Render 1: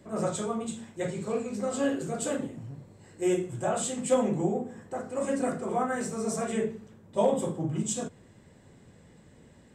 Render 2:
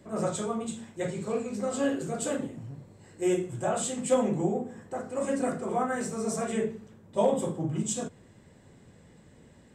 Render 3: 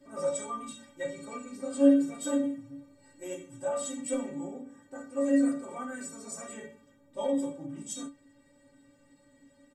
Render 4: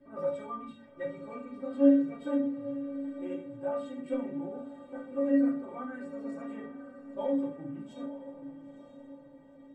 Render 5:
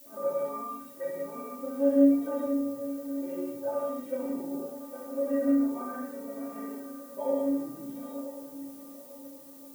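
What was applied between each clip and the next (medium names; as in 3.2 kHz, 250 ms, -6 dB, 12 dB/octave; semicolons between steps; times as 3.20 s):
no audible change
comb 7.4 ms, depth 44%; gain riding 2 s; inharmonic resonator 280 Hz, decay 0.24 s, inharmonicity 0.008; trim +7 dB
distance through air 460 m; echo that smears into a reverb 928 ms, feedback 44%, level -12 dB
band-pass filter 640 Hz, Q 0.58; reverberation, pre-delay 3 ms, DRR -4 dB; added noise violet -51 dBFS; trim -1.5 dB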